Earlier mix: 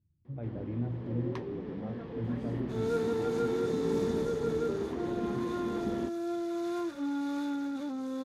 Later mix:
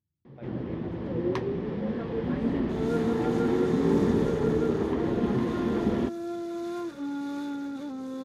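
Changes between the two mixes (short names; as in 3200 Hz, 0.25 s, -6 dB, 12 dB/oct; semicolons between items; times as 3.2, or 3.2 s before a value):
speech: add tilt +3.5 dB/oct; first sound +9.0 dB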